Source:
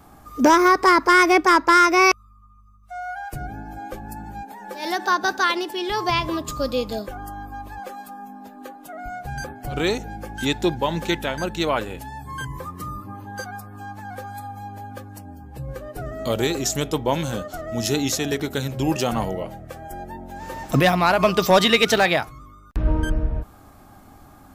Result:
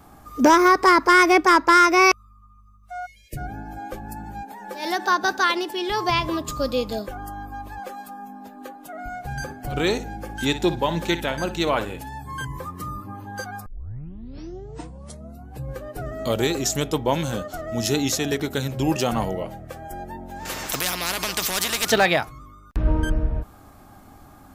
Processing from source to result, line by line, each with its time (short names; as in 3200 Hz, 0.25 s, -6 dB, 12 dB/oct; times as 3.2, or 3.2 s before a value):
3.06–3.37 spectral delete 640–1700 Hz
8.89–12.18 flutter echo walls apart 10.1 m, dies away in 0.26 s
13.66 tape start 1.97 s
20.45–21.9 spectral compressor 4:1